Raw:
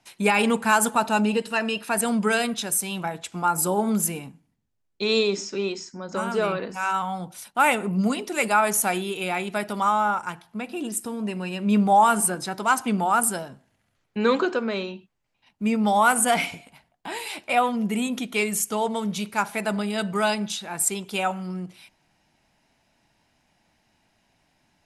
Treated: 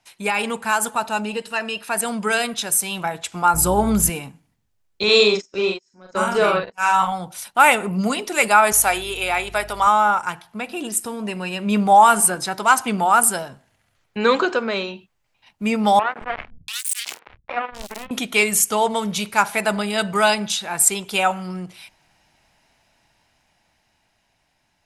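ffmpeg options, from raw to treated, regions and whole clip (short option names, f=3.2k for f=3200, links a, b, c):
-filter_complex "[0:a]asettb=1/sr,asplit=3[a][b][c];[a]atrim=end=3.544[d];[b]atrim=start=3.54:end=4.1,asetpts=PTS-STARTPTS,afade=t=in:d=0.004:c=qsin,afade=t=out:st=0.556:d=0.004:c=qsin,bass=f=250:g=5,treble=f=4k:g=-1,aeval=exprs='val(0)+0.0224*(sin(2*PI*60*n/s)+sin(2*PI*2*60*n/s)/2+sin(2*PI*3*60*n/s)/3+sin(2*PI*4*60*n/s)/4+sin(2*PI*5*60*n/s)/5)':c=same[e];[c]atrim=start=4.096[f];[d][e]acrossfade=d=0.004:c1=hsin:c2=qsin[g];[g][f]acrossfade=d=0.004:c1=qsin:c2=hsin,asettb=1/sr,asplit=3[h][i][j];[h]atrim=end=5.034[k];[i]atrim=start=5.03:end=7.12,asetpts=PTS-STARTPTS,afade=t=in:d=0.004:c=qsin,afade=t=out:st=2.086:d=0.004:c=qsin,agate=range=-52dB:threshold=-29dB:ratio=16:release=100:detection=peak,acompressor=mode=upward:threshold=-25dB:ratio=2.5:attack=3.2:release=140:knee=2.83:detection=peak,asplit=2[l][m];[m]adelay=43,volume=-2.5dB[n];[l][n]amix=inputs=2:normalize=0,atrim=end_sample=92169[o];[j]atrim=start=7.116[p];[k][o]acrossfade=d=0.004:c1=hsin:c2=qsin[q];[q][p]acrossfade=d=0.004:c1=qsin:c2=hsin,asettb=1/sr,asplit=3[r][s][t];[r]atrim=end=8.724[u];[s]atrim=start=8.72:end=9.87,asetpts=PTS-STARTPTS,afade=t=in:d=0.004:c=qsin,afade=t=out:st=1.146:d=0.004:c=qsin,highpass=380,aeval=exprs='val(0)+0.00562*(sin(2*PI*50*n/s)+sin(2*PI*2*50*n/s)/2+sin(2*PI*3*50*n/s)/3+sin(2*PI*4*50*n/s)/4+sin(2*PI*5*50*n/s)/5)':c=same[v];[t]atrim=start=9.866[w];[u][v]acrossfade=d=0.004:c1=hsin:c2=qsin[x];[x][w]acrossfade=d=0.004:c1=qsin:c2=hsin,asettb=1/sr,asplit=3[y][z][aa];[y]atrim=end=15.994[ab];[z]atrim=start=15.99:end=18.11,asetpts=PTS-STARTPTS,afade=t=in:d=0.004:c=qsin,afade=t=out:st=2.116:d=0.004:c=qsin,acompressor=threshold=-29dB:ratio=2.5:attack=3.2:release=140:knee=1:detection=peak,acrusher=bits=3:mix=0:aa=0.5,acrossover=split=160|2300[ac][ad][ae];[ac]adelay=220[af];[ae]adelay=690[ag];[af][ad][ag]amix=inputs=3:normalize=0,atrim=end_sample=93492[ah];[aa]atrim=start=18.106[ai];[ab][ah]acrossfade=d=0.004:c1=hsin:c2=qsin[aj];[aj][ai]acrossfade=d=0.004:c1=qsin:c2=hsin,equalizer=f=240:t=o:w=1.8:g=-7,dynaudnorm=f=460:g=11:m=11.5dB"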